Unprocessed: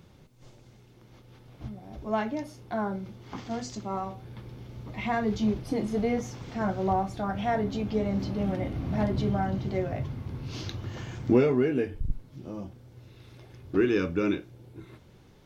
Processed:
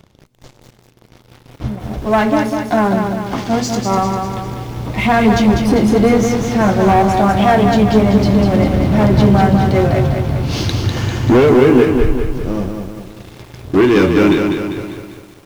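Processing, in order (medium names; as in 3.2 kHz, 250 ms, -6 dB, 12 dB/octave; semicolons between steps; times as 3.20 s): waveshaping leveller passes 3; bit-crushed delay 198 ms, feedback 55%, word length 8-bit, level -5 dB; trim +6 dB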